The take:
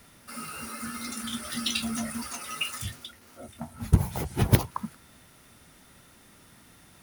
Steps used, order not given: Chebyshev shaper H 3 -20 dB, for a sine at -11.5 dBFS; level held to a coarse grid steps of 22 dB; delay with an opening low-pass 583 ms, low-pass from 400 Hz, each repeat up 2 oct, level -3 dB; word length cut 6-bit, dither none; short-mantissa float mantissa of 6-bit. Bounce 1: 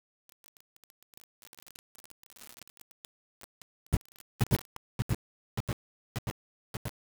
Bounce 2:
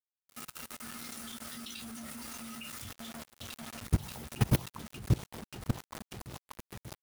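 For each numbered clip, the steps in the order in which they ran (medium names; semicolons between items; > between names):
level held to a coarse grid > delay with an opening low-pass > short-mantissa float > Chebyshev shaper > word length cut; short-mantissa float > Chebyshev shaper > delay with an opening low-pass > word length cut > level held to a coarse grid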